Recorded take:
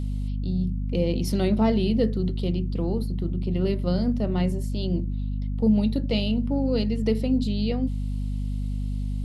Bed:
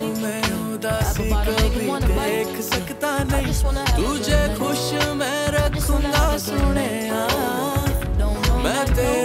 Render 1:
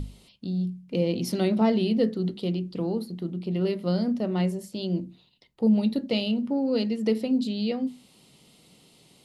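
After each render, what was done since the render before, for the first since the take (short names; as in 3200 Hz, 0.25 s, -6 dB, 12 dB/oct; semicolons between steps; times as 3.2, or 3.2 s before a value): notches 50/100/150/200/250 Hz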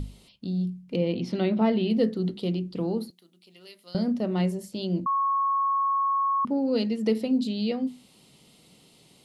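0.96–1.9 Chebyshev low-pass 3100 Hz; 3.1–3.95 differentiator; 5.06–6.45 bleep 1100 Hz -21.5 dBFS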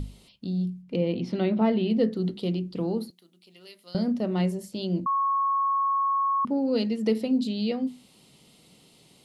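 0.82–2.12 high shelf 5200 Hz -7.5 dB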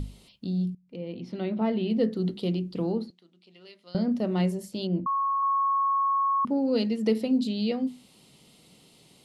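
0.75–2.28 fade in, from -17.5 dB; 2.92–4.12 air absorption 110 m; 4.87–5.43 air absorption 340 m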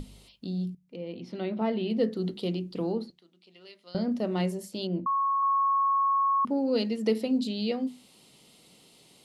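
tone controls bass -5 dB, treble +1 dB; notches 50/100/150 Hz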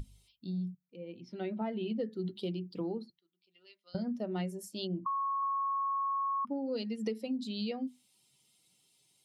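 per-bin expansion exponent 1.5; compressor 6:1, threshold -32 dBFS, peak gain reduction 10.5 dB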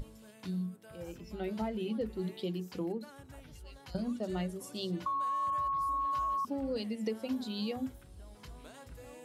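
add bed -31 dB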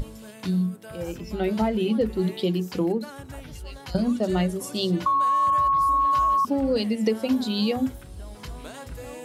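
gain +12 dB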